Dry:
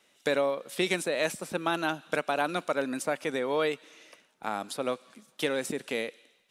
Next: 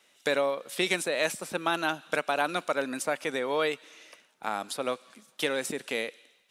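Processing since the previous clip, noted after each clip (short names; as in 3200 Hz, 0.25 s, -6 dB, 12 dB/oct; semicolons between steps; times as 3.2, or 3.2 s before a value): low shelf 490 Hz -6 dB; gain +2.5 dB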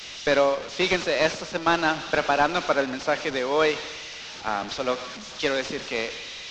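delta modulation 32 kbps, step -32 dBFS; band-limited delay 0.119 s, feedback 73%, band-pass 630 Hz, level -18 dB; three-band expander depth 70%; gain +5.5 dB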